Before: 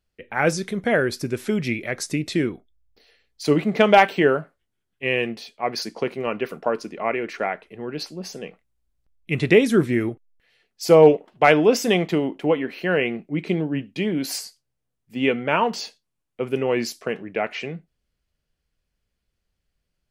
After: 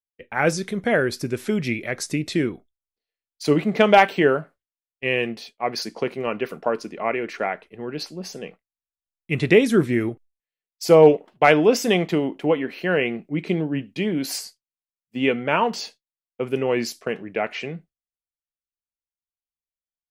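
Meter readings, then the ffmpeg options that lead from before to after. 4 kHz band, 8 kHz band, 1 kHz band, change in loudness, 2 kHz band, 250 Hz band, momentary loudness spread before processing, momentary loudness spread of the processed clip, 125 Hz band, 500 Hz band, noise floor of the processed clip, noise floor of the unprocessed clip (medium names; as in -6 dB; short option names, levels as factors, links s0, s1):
0.0 dB, 0.0 dB, 0.0 dB, 0.0 dB, 0.0 dB, 0.0 dB, 16 LU, 16 LU, 0.0 dB, 0.0 dB, under -85 dBFS, -79 dBFS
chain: -af "agate=range=0.0224:threshold=0.0126:ratio=3:detection=peak"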